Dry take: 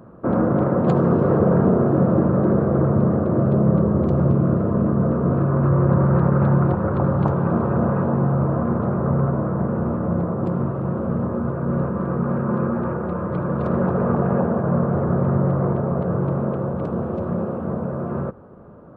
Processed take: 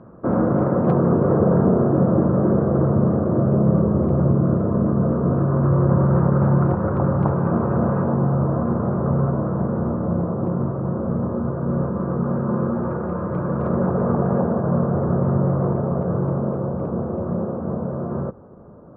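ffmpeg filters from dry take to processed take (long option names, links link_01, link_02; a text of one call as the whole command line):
ffmpeg -i in.wav -af "asetnsamples=nb_out_samples=441:pad=0,asendcmd='0.95 lowpass f 1500;6.57 lowpass f 1900;8.13 lowpass f 1500;9.92 lowpass f 1300;12.91 lowpass f 1800;13.69 lowpass f 1400;16.38 lowpass f 1200',lowpass=1900" out.wav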